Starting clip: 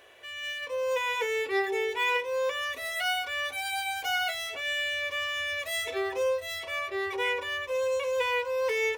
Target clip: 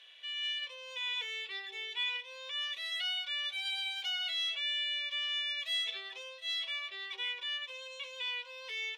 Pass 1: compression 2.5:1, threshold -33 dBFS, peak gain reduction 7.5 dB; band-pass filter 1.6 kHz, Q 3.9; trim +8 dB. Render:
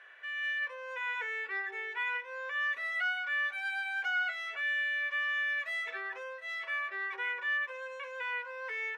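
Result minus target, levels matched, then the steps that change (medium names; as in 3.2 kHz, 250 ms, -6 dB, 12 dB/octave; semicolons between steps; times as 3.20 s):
4 kHz band -14.0 dB
change: band-pass filter 3.4 kHz, Q 3.9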